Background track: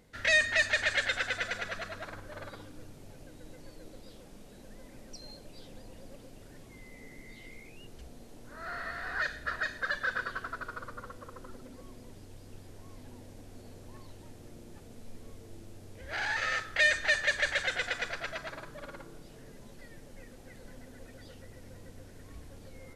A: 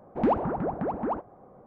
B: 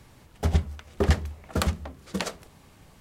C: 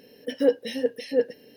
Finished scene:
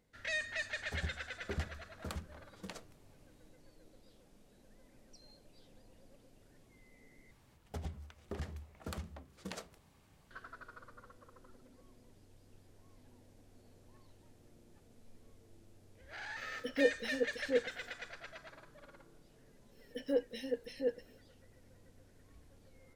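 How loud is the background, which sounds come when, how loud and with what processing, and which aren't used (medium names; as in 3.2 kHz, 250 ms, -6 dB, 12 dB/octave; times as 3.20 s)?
background track -12.5 dB
0.49 s: add B -17.5 dB
7.31 s: replace with B -12.5 dB + compression 3:1, threshold -26 dBFS
16.37 s: add C -9.5 dB
19.68 s: add C -12 dB, fades 0.10 s
not used: A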